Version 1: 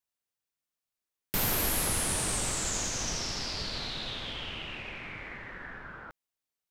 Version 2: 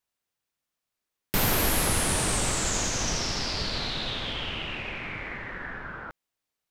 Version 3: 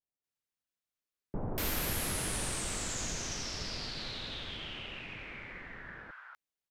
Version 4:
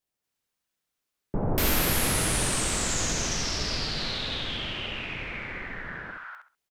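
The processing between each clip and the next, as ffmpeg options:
ffmpeg -i in.wav -af "highshelf=frequency=5100:gain=-5,volume=6.5dB" out.wav
ffmpeg -i in.wav -filter_complex "[0:a]acrossover=split=920[link_01][link_02];[link_02]adelay=240[link_03];[link_01][link_03]amix=inputs=2:normalize=0,volume=-9dB" out.wav
ffmpeg -i in.wav -filter_complex "[0:a]asplit=2[link_01][link_02];[link_02]adelay=67,lowpass=frequency=4600:poles=1,volume=-5dB,asplit=2[link_03][link_04];[link_04]adelay=67,lowpass=frequency=4600:poles=1,volume=0.25,asplit=2[link_05][link_06];[link_06]adelay=67,lowpass=frequency=4600:poles=1,volume=0.25[link_07];[link_01][link_03][link_05][link_07]amix=inputs=4:normalize=0,volume=8.5dB" out.wav

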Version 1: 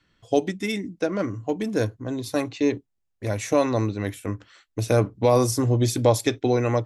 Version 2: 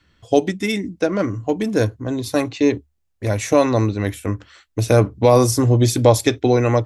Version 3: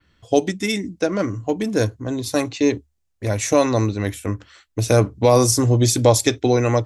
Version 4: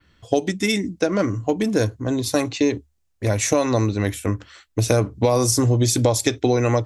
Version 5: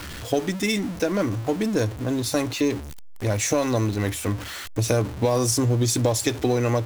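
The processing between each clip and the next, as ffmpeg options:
ffmpeg -i in.wav -af "equalizer=frequency=73:width_type=o:width=0.33:gain=12,volume=5.5dB" out.wav
ffmpeg -i in.wav -af "adynamicequalizer=threshold=0.01:dfrequency=6900:dqfactor=0.85:tfrequency=6900:tqfactor=0.85:attack=5:release=100:ratio=0.375:range=3.5:mode=boostabove:tftype=bell,volume=-1.5dB" out.wav
ffmpeg -i in.wav -af "acompressor=threshold=-17dB:ratio=6,volume=2.5dB" out.wav
ffmpeg -i in.wav -af "aeval=exprs='val(0)+0.5*0.0531*sgn(val(0))':channel_layout=same,volume=-4.5dB" out.wav

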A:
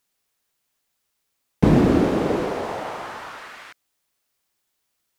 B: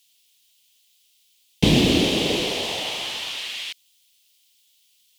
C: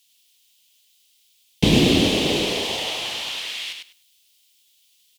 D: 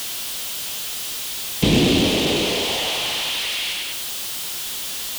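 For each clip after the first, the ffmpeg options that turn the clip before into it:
ffmpeg -i in.wav -af "highshelf=frequency=2100:width_type=q:width=3:gain=14,volume=-2dB" out.wav
ffmpeg -i in.wav -af "aecho=1:1:100|200|300:0.562|0.0956|0.0163" out.wav
ffmpeg -i in.wav -af "aeval=exprs='val(0)+0.5*0.0944*sgn(val(0))':channel_layout=same,volume=-2dB" out.wav

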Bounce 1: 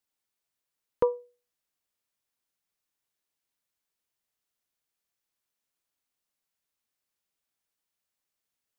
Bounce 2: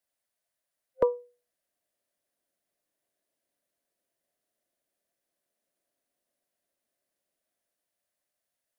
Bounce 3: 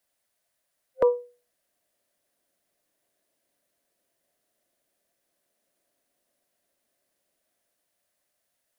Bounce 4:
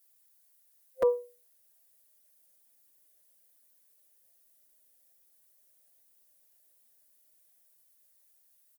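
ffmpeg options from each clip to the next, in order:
ffmpeg -i in.wav -filter_complex "[0:a]superequalizer=8b=3.16:11b=1.58:16b=1.58,acrossover=split=230|450[link_01][link_02][link_03];[link_02]dynaudnorm=framelen=420:gausssize=9:maxgain=13.5dB[link_04];[link_01][link_04][link_03]amix=inputs=3:normalize=0,volume=-1.5dB" out.wav
ffmpeg -i in.wav -af "alimiter=limit=-18dB:level=0:latency=1:release=50,volume=7.5dB" out.wav
ffmpeg -i in.wav -filter_complex "[0:a]aemphasis=mode=production:type=75fm,asplit=2[link_01][link_02];[link_02]adelay=5.1,afreqshift=-1.2[link_03];[link_01][link_03]amix=inputs=2:normalize=1,volume=-2dB" out.wav

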